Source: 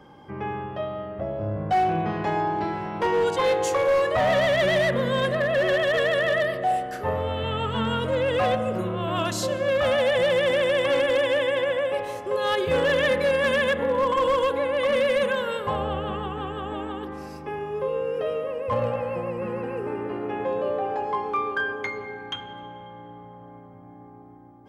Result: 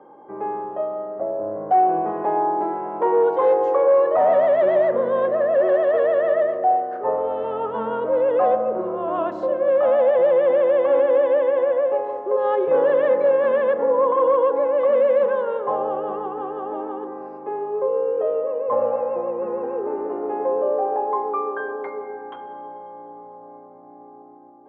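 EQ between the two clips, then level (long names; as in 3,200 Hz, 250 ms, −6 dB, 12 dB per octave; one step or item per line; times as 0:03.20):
flat-topped band-pass 590 Hz, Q 0.83
+5.5 dB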